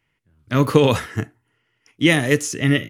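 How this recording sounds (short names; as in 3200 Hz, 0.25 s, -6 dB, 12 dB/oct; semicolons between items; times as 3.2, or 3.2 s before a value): noise floor -72 dBFS; spectral tilt -5.0 dB/oct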